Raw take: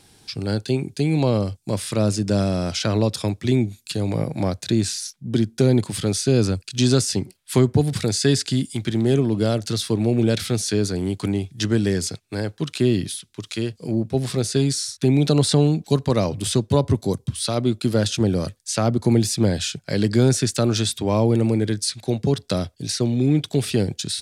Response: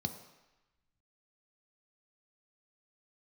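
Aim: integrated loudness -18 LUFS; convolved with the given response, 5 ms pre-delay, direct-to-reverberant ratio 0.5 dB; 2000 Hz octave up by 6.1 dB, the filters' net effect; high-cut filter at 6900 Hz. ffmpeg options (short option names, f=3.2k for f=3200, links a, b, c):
-filter_complex "[0:a]lowpass=6.9k,equalizer=f=2k:t=o:g=8,asplit=2[a][b];[1:a]atrim=start_sample=2205,adelay=5[c];[b][c]afir=irnorm=-1:irlink=0,volume=-1.5dB[d];[a][d]amix=inputs=2:normalize=0,volume=-4dB"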